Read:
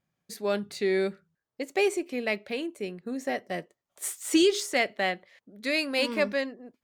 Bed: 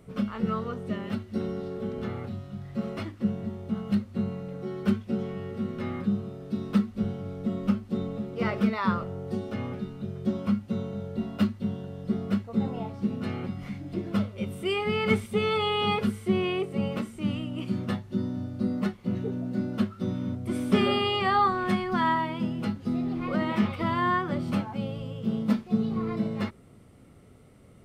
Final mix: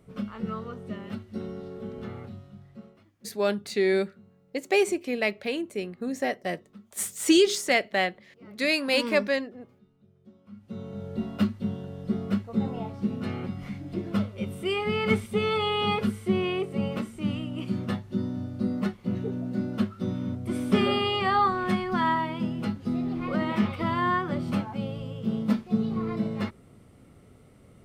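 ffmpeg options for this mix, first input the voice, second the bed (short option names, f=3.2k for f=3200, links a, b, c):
-filter_complex "[0:a]adelay=2950,volume=2.5dB[a];[1:a]volume=21dB,afade=t=out:st=2.2:d=0.79:silence=0.0891251,afade=t=in:st=10.5:d=0.65:silence=0.0530884[b];[a][b]amix=inputs=2:normalize=0"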